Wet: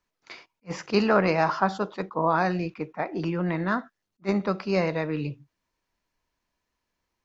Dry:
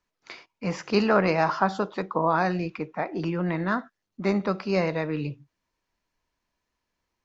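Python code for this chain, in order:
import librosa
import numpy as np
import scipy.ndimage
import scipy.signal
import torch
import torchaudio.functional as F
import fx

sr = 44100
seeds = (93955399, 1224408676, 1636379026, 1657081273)

y = fx.attack_slew(x, sr, db_per_s=490.0)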